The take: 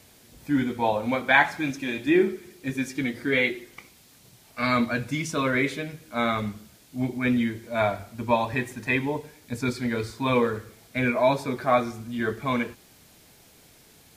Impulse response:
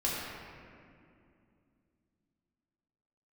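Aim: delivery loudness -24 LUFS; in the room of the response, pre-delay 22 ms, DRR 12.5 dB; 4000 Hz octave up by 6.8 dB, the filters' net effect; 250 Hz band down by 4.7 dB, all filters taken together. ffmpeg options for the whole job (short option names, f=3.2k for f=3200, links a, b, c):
-filter_complex "[0:a]equalizer=f=250:t=o:g=-5.5,equalizer=f=4k:t=o:g=8,asplit=2[a][b];[1:a]atrim=start_sample=2205,adelay=22[c];[b][c]afir=irnorm=-1:irlink=0,volume=-20dB[d];[a][d]amix=inputs=2:normalize=0,volume=1.5dB"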